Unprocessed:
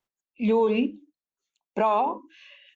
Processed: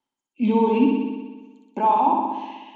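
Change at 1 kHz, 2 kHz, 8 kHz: +7.0 dB, -1.0 dB, n/a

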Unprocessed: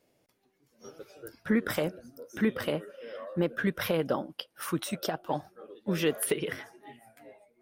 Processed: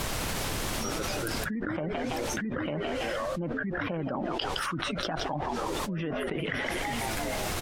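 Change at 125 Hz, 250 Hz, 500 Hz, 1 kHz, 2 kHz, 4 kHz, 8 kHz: +2.5, -0.5, -0.5, +7.0, +4.5, +5.5, +4.0 dB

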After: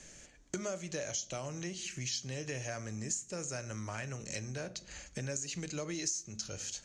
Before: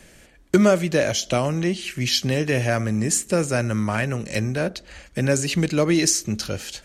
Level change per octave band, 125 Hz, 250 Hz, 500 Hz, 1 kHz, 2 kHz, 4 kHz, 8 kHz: -18.0, -21.5, -19.5, -18.5, -17.0, -15.5, -11.0 dB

